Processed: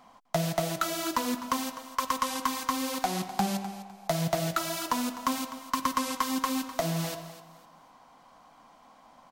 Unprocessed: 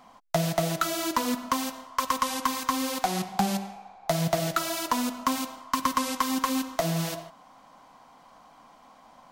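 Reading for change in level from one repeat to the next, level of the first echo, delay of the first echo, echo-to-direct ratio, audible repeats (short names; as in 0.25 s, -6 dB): -11.0 dB, -14.0 dB, 0.253 s, -13.5 dB, 2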